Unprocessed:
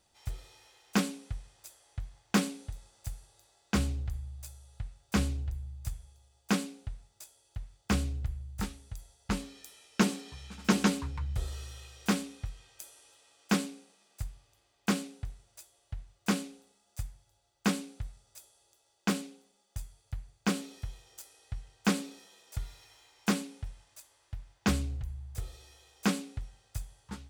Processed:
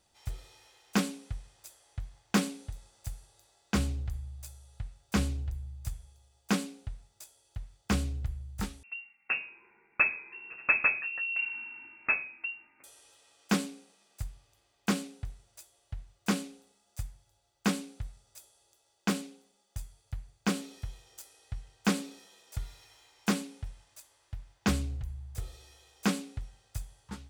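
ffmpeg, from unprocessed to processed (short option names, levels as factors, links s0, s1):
-filter_complex "[0:a]asettb=1/sr,asplit=3[s0][s1][s2];[s0]atrim=end=8.834[s3];[s1]atrim=start=8.83:end=12.84,asetpts=PTS-STARTPTS,afade=t=in:d=0.004:c=qsin,afade=t=out:st=4.006:d=0.004:c=qsin,lowpass=f=2400:t=q:w=0.5098,lowpass=f=2400:t=q:w=0.6013,lowpass=f=2400:t=q:w=0.9,lowpass=f=2400:t=q:w=2.563,afreqshift=-2800[s4];[s2]atrim=start=12.836[s5];[s3][s4]acrossfade=d=0.004:c1=hsin:c2=qsin[s6];[s6][s5]acrossfade=d=0.004:c1=qsin:c2=hsin"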